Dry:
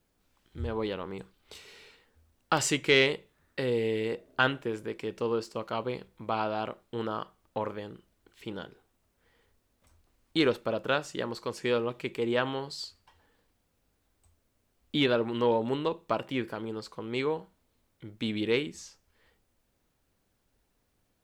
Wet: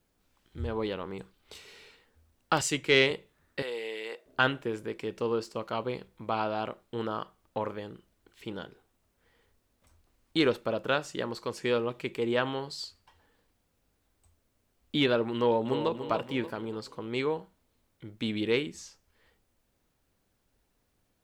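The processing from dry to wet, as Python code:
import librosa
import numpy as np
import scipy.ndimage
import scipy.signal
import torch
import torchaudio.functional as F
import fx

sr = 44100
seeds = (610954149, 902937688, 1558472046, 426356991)

y = fx.band_widen(x, sr, depth_pct=40, at=(2.61, 3.11))
y = fx.highpass(y, sr, hz=690.0, slope=12, at=(3.62, 4.26))
y = fx.echo_throw(y, sr, start_s=15.36, length_s=0.58, ms=290, feedback_pct=45, wet_db=-9.0)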